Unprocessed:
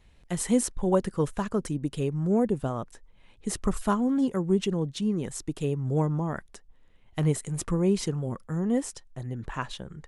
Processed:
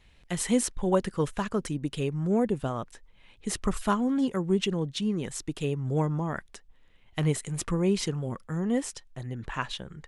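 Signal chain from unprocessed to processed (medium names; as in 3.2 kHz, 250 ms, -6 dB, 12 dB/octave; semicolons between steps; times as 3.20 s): peaking EQ 2.8 kHz +6.5 dB 2.1 oct; trim -1.5 dB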